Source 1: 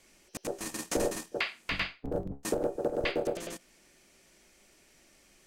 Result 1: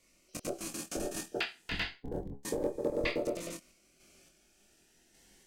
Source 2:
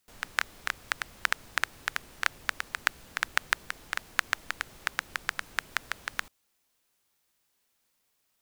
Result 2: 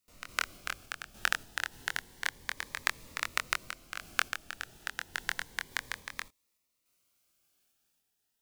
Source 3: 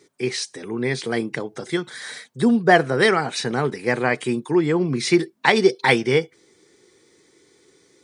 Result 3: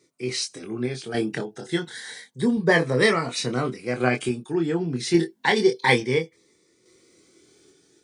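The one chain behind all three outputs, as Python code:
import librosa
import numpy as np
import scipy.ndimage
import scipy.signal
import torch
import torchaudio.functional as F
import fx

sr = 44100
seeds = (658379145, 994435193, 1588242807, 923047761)

y = fx.tremolo_random(x, sr, seeds[0], hz=3.5, depth_pct=55)
y = fx.doubler(y, sr, ms=24.0, db=-5.0)
y = fx.notch_cascade(y, sr, direction='rising', hz=0.3)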